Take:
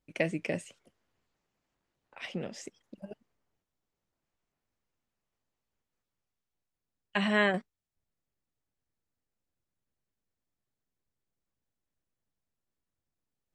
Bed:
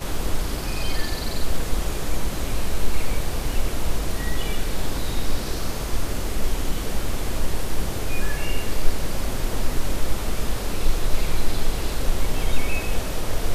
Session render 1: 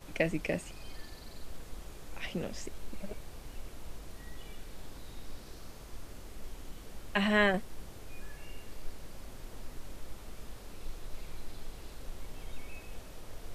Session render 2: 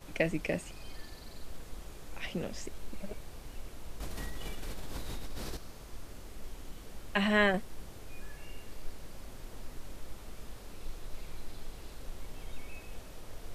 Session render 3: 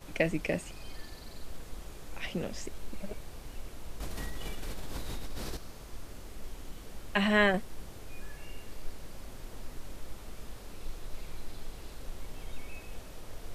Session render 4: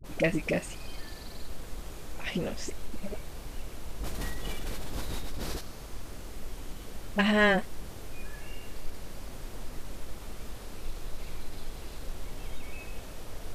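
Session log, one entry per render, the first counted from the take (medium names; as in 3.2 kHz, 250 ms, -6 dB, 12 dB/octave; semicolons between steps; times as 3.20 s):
add bed -21 dB
4.00–5.57 s: level flattener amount 70%
trim +1.5 dB
in parallel at -5 dB: saturation -28 dBFS, distortion -10 dB; on the sum: phase dispersion highs, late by 40 ms, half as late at 510 Hz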